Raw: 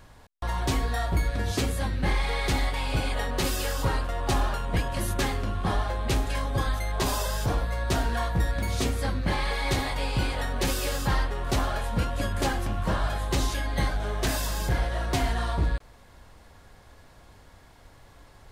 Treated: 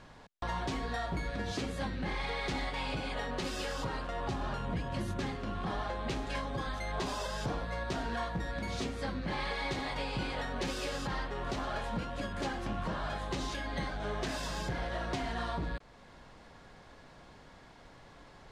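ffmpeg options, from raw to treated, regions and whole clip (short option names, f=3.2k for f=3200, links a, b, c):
-filter_complex "[0:a]asettb=1/sr,asplit=3[a][b][c];[a]atrim=end=4.284[d];[b]atrim=start=4.28:end=5.35,asetpts=PTS-STARTPTS,afade=t=in:d=0.004:c=qsin,afade=t=out:st=1.066:d=0.004:c=qsin,highpass=f=54:w=0.5412,highpass=f=54:w=1.3066,lowshelf=f=200:g=11[e];[c]atrim=start=5.346[f];[d][e]acrossfade=d=0.004:c1=hsin:c2=qsin[g];[g][f]acrossfade=d=0.004:c1=qsin:c2=hsin,lowpass=5.8k,lowshelf=f=120:t=q:w=1.5:g=-6.5,alimiter=level_in=2dB:limit=-24dB:level=0:latency=1:release=450,volume=-2dB"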